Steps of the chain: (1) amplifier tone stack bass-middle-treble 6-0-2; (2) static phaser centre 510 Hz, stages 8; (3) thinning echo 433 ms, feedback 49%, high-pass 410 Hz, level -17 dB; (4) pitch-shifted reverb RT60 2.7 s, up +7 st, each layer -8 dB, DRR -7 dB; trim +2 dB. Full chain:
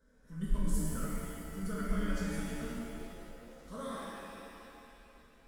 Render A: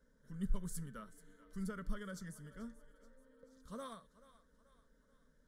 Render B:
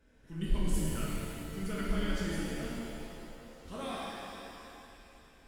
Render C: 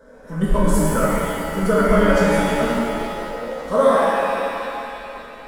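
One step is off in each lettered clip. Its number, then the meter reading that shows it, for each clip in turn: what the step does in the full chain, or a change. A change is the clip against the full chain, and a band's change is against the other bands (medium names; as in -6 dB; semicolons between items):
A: 4, crest factor change +3.5 dB; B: 2, 4 kHz band +5.5 dB; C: 1, 500 Hz band +9.0 dB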